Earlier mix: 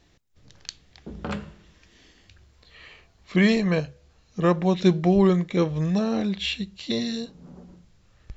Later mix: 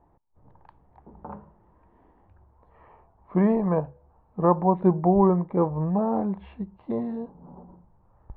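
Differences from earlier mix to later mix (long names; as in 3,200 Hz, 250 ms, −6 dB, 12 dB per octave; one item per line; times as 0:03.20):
speech +9.5 dB
master: add transistor ladder low-pass 1,000 Hz, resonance 70%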